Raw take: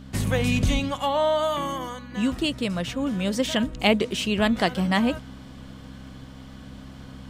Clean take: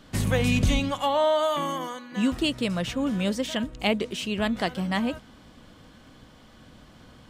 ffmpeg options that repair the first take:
-af "bandreject=f=65.9:t=h:w=4,bandreject=f=131.8:t=h:w=4,bandreject=f=197.7:t=h:w=4,bandreject=f=263.6:t=h:w=4,asetnsamples=n=441:p=0,asendcmd='3.33 volume volume -4.5dB',volume=0dB"

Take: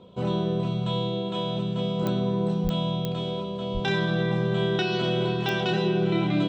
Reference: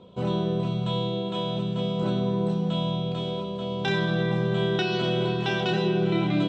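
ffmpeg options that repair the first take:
-filter_complex "[0:a]adeclick=t=4,asplit=3[a][b][c];[a]afade=t=out:st=2.63:d=0.02[d];[b]highpass=f=140:w=0.5412,highpass=f=140:w=1.3066,afade=t=in:st=2.63:d=0.02,afade=t=out:st=2.75:d=0.02[e];[c]afade=t=in:st=2.75:d=0.02[f];[d][e][f]amix=inputs=3:normalize=0,asplit=3[g][h][i];[g]afade=t=out:st=3.73:d=0.02[j];[h]highpass=f=140:w=0.5412,highpass=f=140:w=1.3066,afade=t=in:st=3.73:d=0.02,afade=t=out:st=3.85:d=0.02[k];[i]afade=t=in:st=3.85:d=0.02[l];[j][k][l]amix=inputs=3:normalize=0"

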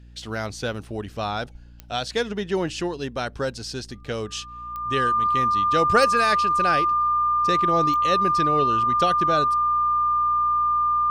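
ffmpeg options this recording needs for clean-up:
-af "adeclick=t=4,bandreject=f=59.3:t=h:w=4,bandreject=f=118.6:t=h:w=4,bandreject=f=177.9:t=h:w=4,bandreject=f=237.2:t=h:w=4,bandreject=f=296.5:t=h:w=4,bandreject=f=1.2k:w=30"

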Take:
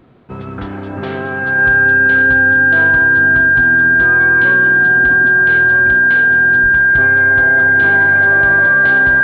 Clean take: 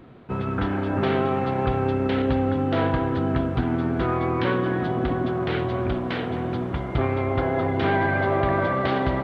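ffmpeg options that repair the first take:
-filter_complex "[0:a]bandreject=f=1.6k:w=30,asplit=3[a][b][c];[a]afade=t=out:st=6.62:d=0.02[d];[b]highpass=f=140:w=0.5412,highpass=f=140:w=1.3066,afade=t=in:st=6.62:d=0.02,afade=t=out:st=6.74:d=0.02[e];[c]afade=t=in:st=6.74:d=0.02[f];[d][e][f]amix=inputs=3:normalize=0"

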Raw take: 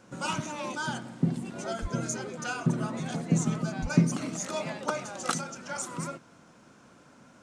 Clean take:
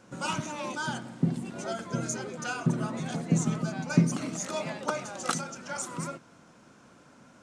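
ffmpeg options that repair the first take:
-filter_complex "[0:a]asplit=3[a][b][c];[a]afade=t=out:st=1.81:d=0.02[d];[b]highpass=f=140:w=0.5412,highpass=f=140:w=1.3066,afade=t=in:st=1.81:d=0.02,afade=t=out:st=1.93:d=0.02[e];[c]afade=t=in:st=1.93:d=0.02[f];[d][e][f]amix=inputs=3:normalize=0,asplit=3[g][h][i];[g]afade=t=out:st=3.81:d=0.02[j];[h]highpass=f=140:w=0.5412,highpass=f=140:w=1.3066,afade=t=in:st=3.81:d=0.02,afade=t=out:st=3.93:d=0.02[k];[i]afade=t=in:st=3.93:d=0.02[l];[j][k][l]amix=inputs=3:normalize=0"

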